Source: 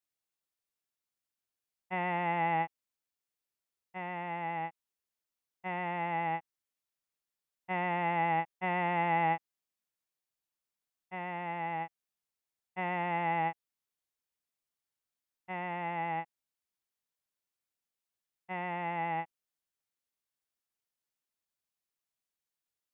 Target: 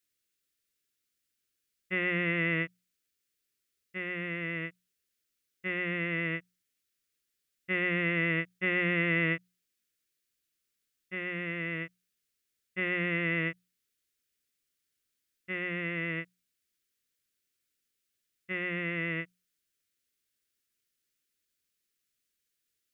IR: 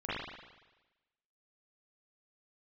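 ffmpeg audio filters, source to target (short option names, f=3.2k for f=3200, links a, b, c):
-af "asuperstop=centerf=830:order=4:qfactor=0.87,equalizer=f=160:t=o:w=0.77:g=-2.5,bandreject=f=60:t=h:w=6,bandreject=f=120:t=h:w=6,bandreject=f=180:t=h:w=6,volume=8.5dB"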